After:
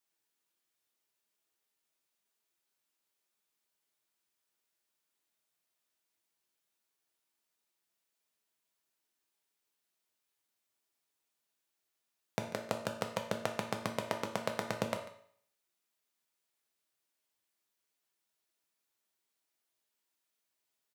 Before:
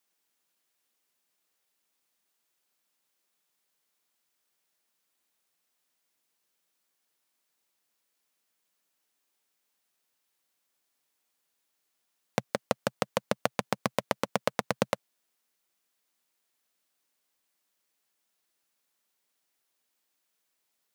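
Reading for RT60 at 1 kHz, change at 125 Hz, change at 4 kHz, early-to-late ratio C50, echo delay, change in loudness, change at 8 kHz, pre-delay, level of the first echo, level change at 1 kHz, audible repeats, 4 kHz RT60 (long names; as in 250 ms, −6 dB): 0.60 s, −4.0 dB, −5.5 dB, 8.0 dB, 143 ms, −5.5 dB, −6.0 dB, 3 ms, −17.0 dB, −6.0 dB, 1, 0.55 s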